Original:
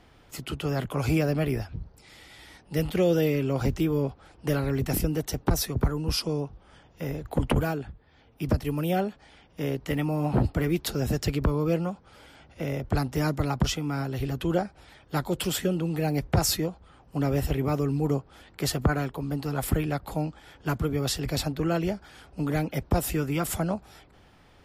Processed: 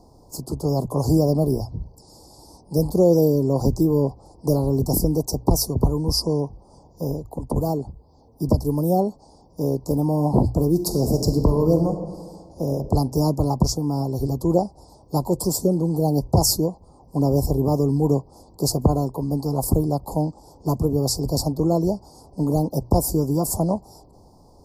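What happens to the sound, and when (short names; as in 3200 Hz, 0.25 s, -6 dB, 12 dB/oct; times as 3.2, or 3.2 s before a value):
7.12–7.71 dip -11 dB, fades 0.25 s
10.72–12.68 reverb throw, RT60 1.6 s, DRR 6 dB
whole clip: Chebyshev band-stop 1000–4700 Hz, order 4; notches 60/120 Hz; gain +7 dB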